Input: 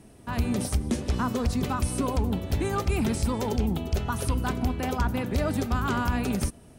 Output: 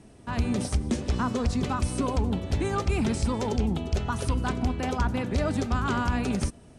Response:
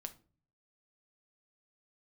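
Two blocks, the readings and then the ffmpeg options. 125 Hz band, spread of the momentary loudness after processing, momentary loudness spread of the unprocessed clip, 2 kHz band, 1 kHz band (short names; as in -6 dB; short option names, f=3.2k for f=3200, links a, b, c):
0.0 dB, 2 LU, 2 LU, 0.0 dB, 0.0 dB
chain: -af "lowpass=f=8.9k:w=0.5412,lowpass=f=8.9k:w=1.3066"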